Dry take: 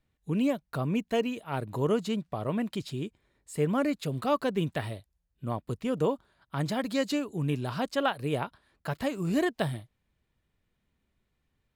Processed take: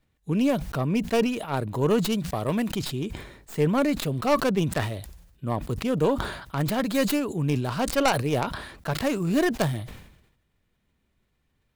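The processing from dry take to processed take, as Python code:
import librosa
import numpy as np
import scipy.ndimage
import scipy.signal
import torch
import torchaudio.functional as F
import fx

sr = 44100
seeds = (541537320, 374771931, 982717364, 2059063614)

y = fx.tracing_dist(x, sr, depth_ms=0.26)
y = fx.high_shelf(y, sr, hz=3500.0, db=9.0, at=(2.12, 2.71))
y = fx.sustainer(y, sr, db_per_s=65.0)
y = y * librosa.db_to_amplitude(4.0)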